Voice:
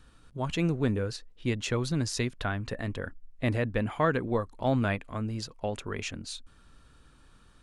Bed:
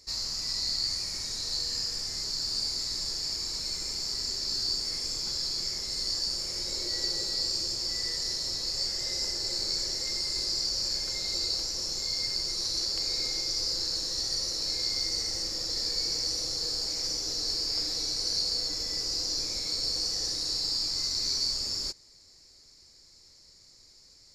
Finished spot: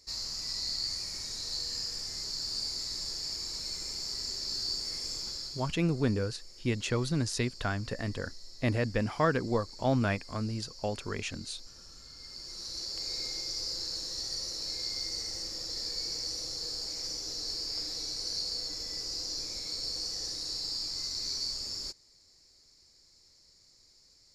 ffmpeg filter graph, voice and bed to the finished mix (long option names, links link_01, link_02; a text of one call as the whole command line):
ffmpeg -i stem1.wav -i stem2.wav -filter_complex "[0:a]adelay=5200,volume=-1dB[link_01];[1:a]volume=10dB,afade=type=out:start_time=5.16:duration=0.6:silence=0.16788,afade=type=in:start_time=12.16:duration=0.97:silence=0.199526[link_02];[link_01][link_02]amix=inputs=2:normalize=0" out.wav